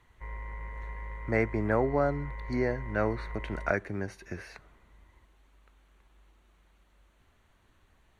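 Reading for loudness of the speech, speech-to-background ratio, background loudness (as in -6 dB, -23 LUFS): -31.5 LUFS, 10.5 dB, -42.0 LUFS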